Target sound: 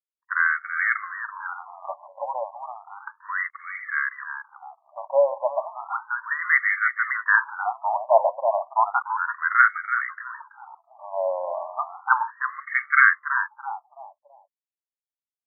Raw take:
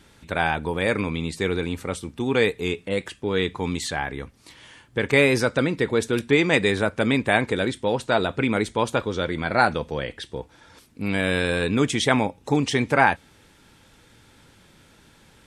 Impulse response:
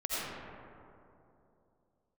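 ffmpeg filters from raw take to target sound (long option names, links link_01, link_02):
-filter_complex "[0:a]aeval=exprs='val(0)*gte(abs(val(0)),0.0126)':channel_layout=same,anlmdn=0.398,asplit=2[link_01][link_02];[link_02]adelay=331,lowpass=frequency=1100:poles=1,volume=-4.5dB,asplit=2[link_03][link_04];[link_04]adelay=331,lowpass=frequency=1100:poles=1,volume=0.33,asplit=2[link_05][link_06];[link_06]adelay=331,lowpass=frequency=1100:poles=1,volume=0.33,asplit=2[link_07][link_08];[link_08]adelay=331,lowpass=frequency=1100:poles=1,volume=0.33[link_09];[link_03][link_05][link_07][link_09]amix=inputs=4:normalize=0[link_10];[link_01][link_10]amix=inputs=2:normalize=0,afftfilt=real='re*between(b*sr/1024,770*pow(1600/770,0.5+0.5*sin(2*PI*0.33*pts/sr))/1.41,770*pow(1600/770,0.5+0.5*sin(2*PI*0.33*pts/sr))*1.41)':imag='im*between(b*sr/1024,770*pow(1600/770,0.5+0.5*sin(2*PI*0.33*pts/sr))/1.41,770*pow(1600/770,0.5+0.5*sin(2*PI*0.33*pts/sr))*1.41)':win_size=1024:overlap=0.75,volume=7dB"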